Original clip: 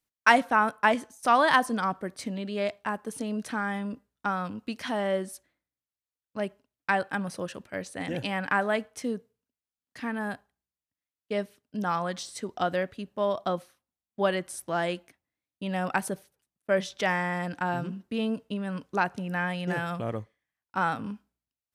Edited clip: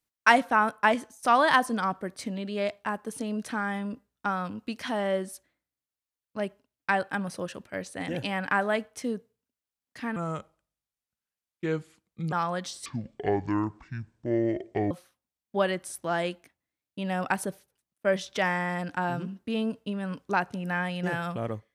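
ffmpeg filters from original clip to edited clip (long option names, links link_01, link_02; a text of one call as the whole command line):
ffmpeg -i in.wav -filter_complex "[0:a]asplit=5[link_01][link_02][link_03][link_04][link_05];[link_01]atrim=end=10.164[link_06];[link_02]atrim=start=10.16:end=11.85,asetpts=PTS-STARTPTS,asetrate=34398,aresample=44100[link_07];[link_03]atrim=start=11.846:end=12.384[link_08];[link_04]atrim=start=12.38:end=13.55,asetpts=PTS-STARTPTS,asetrate=25137,aresample=44100,atrim=end_sample=90521,asetpts=PTS-STARTPTS[link_09];[link_05]atrim=start=13.546[link_10];[link_06][link_07]acrossfade=duration=0.004:curve1=hsin:curve2=hsin[link_11];[link_11][link_08]acrossfade=duration=0.004:curve1=hsin:curve2=hsin[link_12];[link_12][link_09]acrossfade=duration=0.004:curve1=hsin:curve2=hsin[link_13];[link_13][link_10]acrossfade=duration=0.004:curve1=hsin:curve2=hsin" out.wav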